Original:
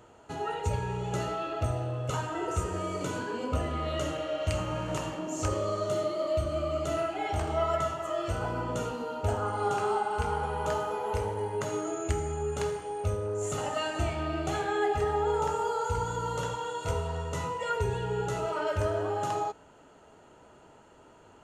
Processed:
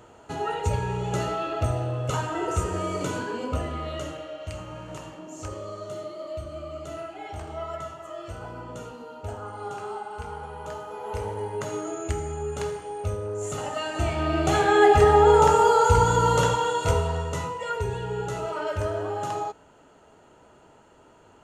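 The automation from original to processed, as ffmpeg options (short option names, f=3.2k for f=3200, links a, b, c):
-af "volume=22.5dB,afade=t=out:st=3.01:d=1.37:silence=0.298538,afade=t=in:st=10.87:d=0.44:silence=0.446684,afade=t=in:st=13.86:d=1.09:silence=0.281838,afade=t=out:st=16.31:d=1.23:silence=0.281838"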